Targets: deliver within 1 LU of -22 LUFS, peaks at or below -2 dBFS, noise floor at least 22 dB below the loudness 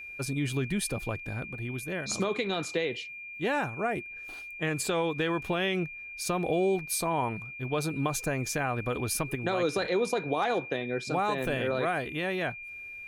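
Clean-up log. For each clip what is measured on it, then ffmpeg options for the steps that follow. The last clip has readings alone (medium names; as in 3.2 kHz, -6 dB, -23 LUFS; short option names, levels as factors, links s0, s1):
steady tone 2.4 kHz; tone level -40 dBFS; loudness -30.5 LUFS; peak level -14.5 dBFS; loudness target -22.0 LUFS
-> -af "bandreject=f=2400:w=30"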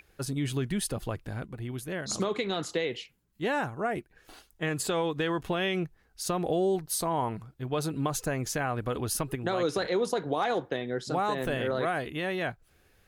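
steady tone not found; loudness -31.0 LUFS; peak level -15.0 dBFS; loudness target -22.0 LUFS
-> -af "volume=2.82"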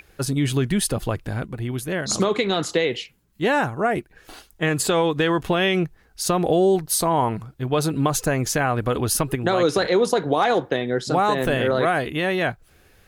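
loudness -22.0 LUFS; peak level -6.0 dBFS; noise floor -57 dBFS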